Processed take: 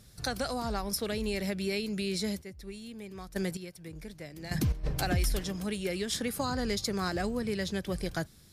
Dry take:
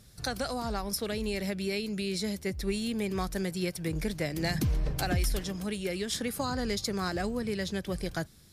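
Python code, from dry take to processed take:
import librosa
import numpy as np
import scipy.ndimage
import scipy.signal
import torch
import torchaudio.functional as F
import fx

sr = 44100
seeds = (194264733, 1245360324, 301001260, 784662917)

y = fx.step_gate(x, sr, bpm=143, pattern='x.........x', floor_db=-12.0, edge_ms=4.5, at=(2.27, 4.83), fade=0.02)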